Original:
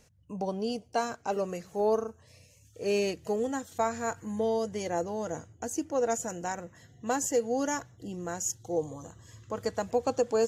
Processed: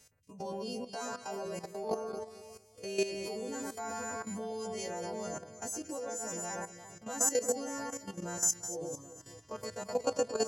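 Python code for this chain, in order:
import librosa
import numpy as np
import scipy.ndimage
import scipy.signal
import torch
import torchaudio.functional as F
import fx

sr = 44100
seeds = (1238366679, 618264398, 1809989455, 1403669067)

y = fx.freq_snap(x, sr, grid_st=2)
y = fx.echo_alternate(y, sr, ms=115, hz=2000.0, feedback_pct=64, wet_db=-4.0)
y = fx.level_steps(y, sr, step_db=12)
y = y * 10.0 ** (-2.5 / 20.0)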